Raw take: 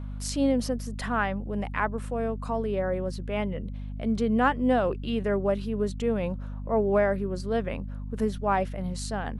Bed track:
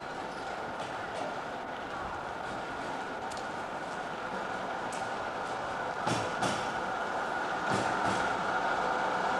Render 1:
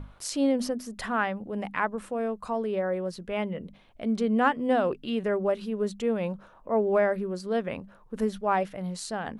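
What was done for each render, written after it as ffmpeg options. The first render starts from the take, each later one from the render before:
-af "bandreject=f=50:t=h:w=6,bandreject=f=100:t=h:w=6,bandreject=f=150:t=h:w=6,bandreject=f=200:t=h:w=6,bandreject=f=250:t=h:w=6"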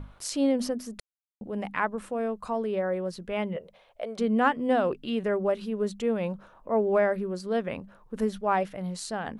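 -filter_complex "[0:a]asettb=1/sr,asplit=3[s0][s1][s2];[s0]atrim=end=3.564[s3];[s1]atrim=start=3.56:end=4.19,asetpts=PTS-STARTPTS,afade=t=in:d=0.004:c=qsin,afade=t=out:st=0.626:d=0.004:c=qsin,lowshelf=f=380:t=q:w=3:g=-11.5[s4];[s2]atrim=start=4.186[s5];[s3][s4]acrossfade=d=0.004:c1=hsin:c2=qsin[s6];[s6][s5]acrossfade=d=0.004:c1=qsin:c2=hsin,asplit=3[s7][s8][s9];[s7]atrim=end=1,asetpts=PTS-STARTPTS,afade=t=out:st=0.996:d=0.004:c=hsin[s10];[s8]atrim=start=1:end=1.41,asetpts=PTS-STARTPTS,volume=0[s11];[s9]atrim=start=1.41,asetpts=PTS-STARTPTS,afade=t=in:d=0.004:c=hsin[s12];[s10][s11][s12]concat=n=3:v=0:a=1"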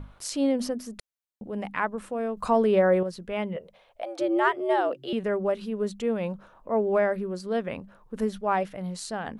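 -filter_complex "[0:a]asettb=1/sr,asplit=3[s0][s1][s2];[s0]atrim=end=4.024[s3];[s1]atrim=start=4.02:end=5.13,asetpts=PTS-STARTPTS,afade=t=in:d=0.004:c=qsin,afade=t=out:st=1.106:d=0.004:c=qsin,afreqshift=120[s4];[s2]atrim=start=5.126[s5];[s3][s4]acrossfade=d=0.004:c1=hsin:c2=qsin[s6];[s6][s5]acrossfade=d=0.004:c1=qsin:c2=hsin,asplit=3[s7][s8][s9];[s7]atrim=end=2.372[s10];[s8]atrim=start=2.368:end=3.032,asetpts=PTS-STARTPTS,volume=2.51[s11];[s9]atrim=start=3.028[s12];[s10][s11]acrossfade=d=0.004:c1=hsin:c2=hsin[s13];[s13][s12]acrossfade=d=0.004:c1=hsin:c2=hsin"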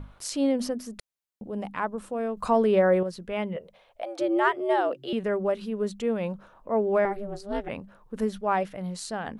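-filter_complex "[0:a]asettb=1/sr,asplit=3[s0][s1][s2];[s0]atrim=end=1.474[s3];[s1]atrim=start=1.47:end=2.14,asetpts=PTS-STARTPTS,afade=t=in:d=0.004:c=qsin,afade=t=out:st=0.666:d=0.004:c=qsin,equalizer=f=2000:t=o:w=1:g=-7[s4];[s2]atrim=start=2.136[s5];[s3][s4]acrossfade=d=0.004:c1=hsin:c2=qsin[s6];[s6][s5]acrossfade=d=0.004:c1=qsin:c2=hsin,asettb=1/sr,asplit=3[s7][s8][s9];[s7]atrim=end=7.054[s10];[s8]atrim=start=7.05:end=7.69,asetpts=PTS-STARTPTS,afade=t=in:d=0.004:c=qsin,afade=t=out:st=0.636:d=0.004:c=qsin,aeval=exprs='val(0)*sin(2*PI*200*n/s)':c=same[s11];[s9]atrim=start=7.686[s12];[s10][s11]acrossfade=d=0.004:c1=hsin:c2=qsin[s13];[s13][s12]acrossfade=d=0.004:c1=qsin:c2=hsin"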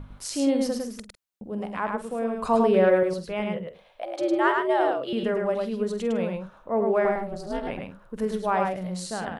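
-filter_complex "[0:a]asplit=2[s0][s1];[s1]adelay=48,volume=0.237[s2];[s0][s2]amix=inputs=2:normalize=0,asplit=2[s3][s4];[s4]aecho=0:1:105:0.668[s5];[s3][s5]amix=inputs=2:normalize=0"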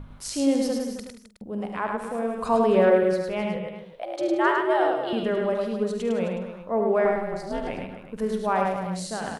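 -af "aecho=1:1:72.89|262.4:0.316|0.282"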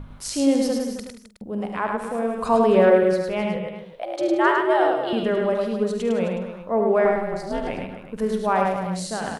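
-af "volume=1.41"

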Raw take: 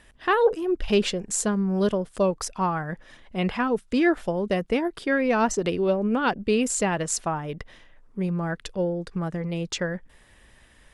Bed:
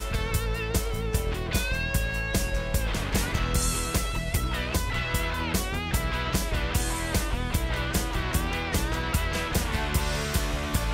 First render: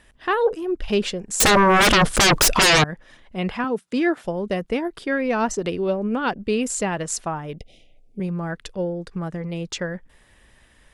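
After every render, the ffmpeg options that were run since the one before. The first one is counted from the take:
-filter_complex "[0:a]asettb=1/sr,asplit=3[s0][s1][s2];[s0]atrim=end=1.404[s3];[s1]atrim=start=1.4:end=2.84,asetpts=PTS-STARTPTS,afade=t=in:d=0.004:c=qsin,afade=t=out:st=1.436:d=0.004:c=qsin,aeval=exprs='0.266*sin(PI/2*10*val(0)/0.266)':c=same[s4];[s2]atrim=start=2.836[s5];[s3][s4]acrossfade=d=0.004:c1=hsin:c2=qsin[s6];[s6][s5]acrossfade=d=0.004:c1=qsin:c2=hsin,asettb=1/sr,asplit=3[s7][s8][s9];[s7]atrim=end=3.644[s10];[s8]atrim=start=3.64:end=4.25,asetpts=PTS-STARTPTS,afade=t=in:d=0.004:c=qsin,afade=t=out:st=0.606:d=0.004:c=qsin,highpass=f=110:w=0.5412,highpass=f=110:w=1.3066[s11];[s9]atrim=start=4.246[s12];[s10][s11]acrossfade=d=0.004:c1=hsin:c2=qsin[s13];[s13][s12]acrossfade=d=0.004:c1=qsin:c2=hsin,asettb=1/sr,asplit=3[s14][s15][s16];[s14]atrim=end=7.564[s17];[s15]atrim=start=7.56:end=8.2,asetpts=PTS-STARTPTS,afade=t=in:d=0.004:c=qsin,afade=t=out:st=0.636:d=0.004:c=qsin,asuperstop=centerf=1300:order=20:qfactor=0.95[s18];[s16]atrim=start=8.196[s19];[s17][s18]acrossfade=d=0.004:c1=hsin:c2=qsin[s20];[s20][s19]acrossfade=d=0.004:c1=qsin:c2=hsin"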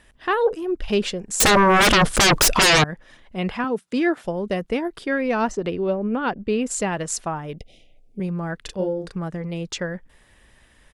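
-filter_complex "[0:a]asettb=1/sr,asplit=3[s0][s1][s2];[s0]atrim=end=5.504[s3];[s1]atrim=start=5.5:end=6.71,asetpts=PTS-STARTPTS,afade=t=in:d=0.004:c=qsin,afade=t=out:st=1.206:d=0.004:c=qsin,lowpass=f=2600:p=1[s4];[s2]atrim=start=6.706[s5];[s3][s4]acrossfade=d=0.004:c1=hsin:c2=qsin[s6];[s6][s5]acrossfade=d=0.004:c1=qsin:c2=hsin,asplit=3[s7][s8][s9];[s7]afade=t=out:st=8.64:d=0.02[s10];[s8]asplit=2[s11][s12];[s12]adelay=37,volume=0.708[s13];[s11][s13]amix=inputs=2:normalize=0,afade=t=in:st=8.64:d=0.02,afade=t=out:st=9.11:d=0.02[s14];[s9]afade=t=in:st=9.11:d=0.02[s15];[s10][s14][s15]amix=inputs=3:normalize=0"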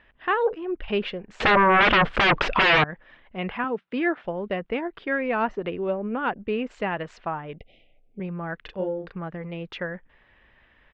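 -af "lowpass=f=2900:w=0.5412,lowpass=f=2900:w=1.3066,lowshelf=f=480:g=-7"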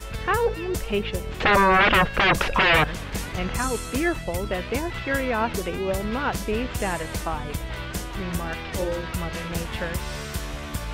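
-filter_complex "[1:a]volume=0.631[s0];[0:a][s0]amix=inputs=2:normalize=0"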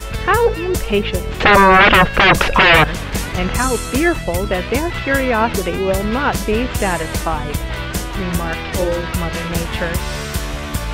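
-af "volume=2.66,alimiter=limit=0.891:level=0:latency=1"

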